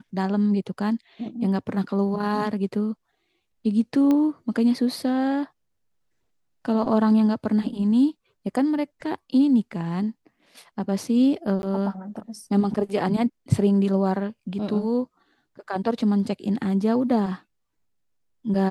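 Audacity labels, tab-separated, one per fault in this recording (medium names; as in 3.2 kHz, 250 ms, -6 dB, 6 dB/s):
4.110000	4.110000	pop -13 dBFS
11.620000	11.630000	dropout 11 ms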